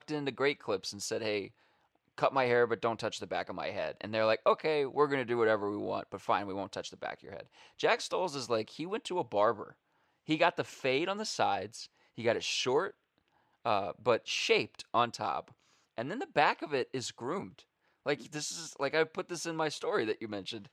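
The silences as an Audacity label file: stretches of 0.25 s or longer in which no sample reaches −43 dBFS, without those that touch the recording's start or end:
1.470000	2.180000	silence
7.420000	7.800000	silence
9.700000	10.280000	silence
11.850000	12.180000	silence
12.900000	13.650000	silence
15.480000	15.980000	silence
17.590000	18.060000	silence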